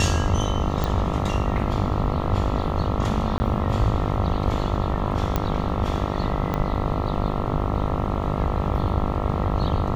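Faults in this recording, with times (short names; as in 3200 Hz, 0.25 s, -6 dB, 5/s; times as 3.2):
buzz 50 Hz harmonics 27 -27 dBFS
0.84 pop
3.38–3.4 gap 20 ms
5.36 pop -9 dBFS
6.54 pop -12 dBFS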